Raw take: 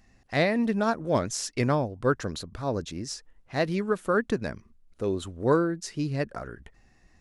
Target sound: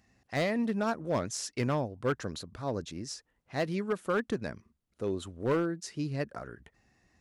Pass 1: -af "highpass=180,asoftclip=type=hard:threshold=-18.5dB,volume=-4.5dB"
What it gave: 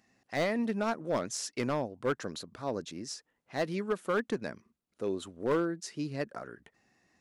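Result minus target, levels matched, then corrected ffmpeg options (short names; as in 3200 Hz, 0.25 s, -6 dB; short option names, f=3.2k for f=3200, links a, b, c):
125 Hz band -4.5 dB
-af "highpass=70,asoftclip=type=hard:threshold=-18.5dB,volume=-4.5dB"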